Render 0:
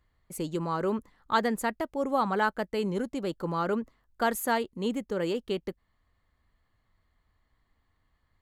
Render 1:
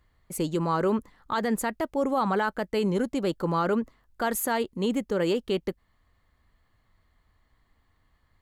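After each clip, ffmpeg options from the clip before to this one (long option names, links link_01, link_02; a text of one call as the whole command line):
ffmpeg -i in.wav -af "alimiter=limit=-21.5dB:level=0:latency=1:release=43,volume=5dB" out.wav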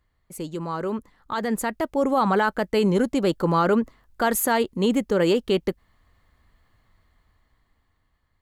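ffmpeg -i in.wav -af "dynaudnorm=framelen=450:gausssize=7:maxgain=10dB,volume=-4.5dB" out.wav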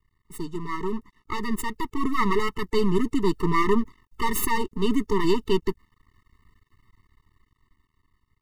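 ffmpeg -i in.wav -af "aeval=exprs='max(val(0),0)':channel_layout=same,afftfilt=real='re*eq(mod(floor(b*sr/1024/440),2),0)':imag='im*eq(mod(floor(b*sr/1024/440),2),0)':win_size=1024:overlap=0.75,volume=5dB" out.wav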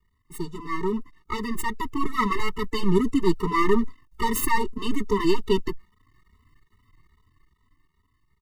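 ffmpeg -i in.wav -filter_complex "[0:a]asplit=2[link_01][link_02];[link_02]adelay=2.8,afreqshift=2.4[link_03];[link_01][link_03]amix=inputs=2:normalize=1,volume=3.5dB" out.wav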